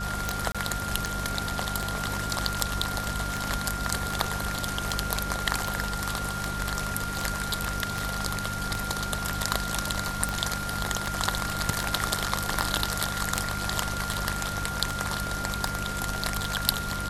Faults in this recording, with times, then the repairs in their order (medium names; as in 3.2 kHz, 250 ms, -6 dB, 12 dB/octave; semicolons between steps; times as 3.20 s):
hum 50 Hz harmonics 4 -36 dBFS
tick 78 rpm
whine 1.4 kHz -33 dBFS
0.52–0.55 s: dropout 26 ms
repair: de-click; de-hum 50 Hz, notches 4; band-stop 1.4 kHz, Q 30; interpolate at 0.52 s, 26 ms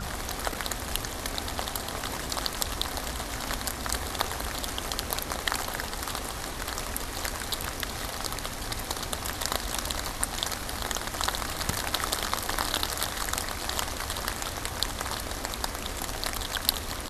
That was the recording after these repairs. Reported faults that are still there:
nothing left